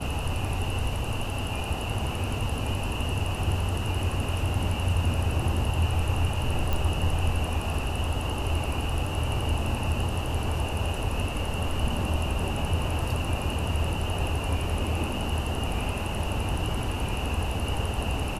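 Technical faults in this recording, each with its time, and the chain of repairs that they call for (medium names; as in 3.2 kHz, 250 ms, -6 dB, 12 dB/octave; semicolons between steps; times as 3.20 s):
6.73 s: pop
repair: de-click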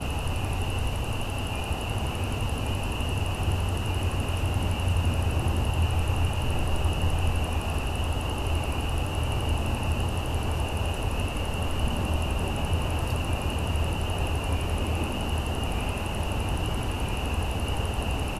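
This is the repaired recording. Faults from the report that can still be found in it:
nothing left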